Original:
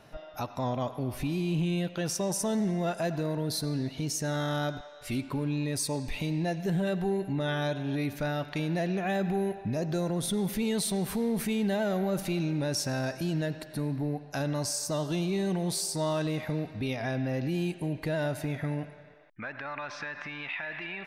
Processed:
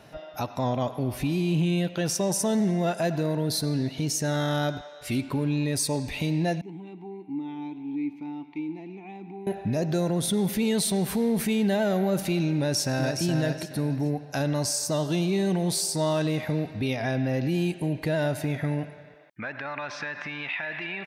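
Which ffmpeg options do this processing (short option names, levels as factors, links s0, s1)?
-filter_complex "[0:a]asettb=1/sr,asplit=3[s0][s1][s2];[s0]atrim=end=6.614[s3];[s1]atrim=start=6.61:end=9.47,asetpts=PTS-STARTPTS,afade=t=in:d=0.004:c=qsin,afade=t=out:st=2.856:d=0.004:c=qsin,asplit=3[s4][s5][s6];[s4]bandpass=f=300:t=q:w=8,volume=1[s7];[s5]bandpass=f=870:t=q:w=8,volume=0.501[s8];[s6]bandpass=f=2240:t=q:w=8,volume=0.355[s9];[s7][s8][s9]amix=inputs=3:normalize=0[s10];[s2]atrim=start=9.466[s11];[s3][s10]acrossfade=d=0.004:c1=hsin:c2=qsin[s12];[s12][s11]acrossfade=d=0.004:c1=qsin:c2=hsin,asplit=2[s13][s14];[s14]afade=t=in:st=12.56:d=0.01,afade=t=out:st=13.23:d=0.01,aecho=0:1:420|840|1260:0.501187|0.125297|0.0313242[s15];[s13][s15]amix=inputs=2:normalize=0,highpass=54,equalizer=f=1200:t=o:w=0.52:g=-3,volume=1.68"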